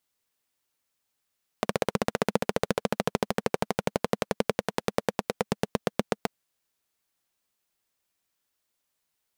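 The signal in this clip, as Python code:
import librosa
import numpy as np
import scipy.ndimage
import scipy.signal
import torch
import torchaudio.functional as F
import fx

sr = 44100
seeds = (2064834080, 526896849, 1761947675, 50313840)

y = fx.engine_single_rev(sr, seeds[0], length_s=4.64, rpm=1900, resonances_hz=(210.0, 460.0), end_rpm=900)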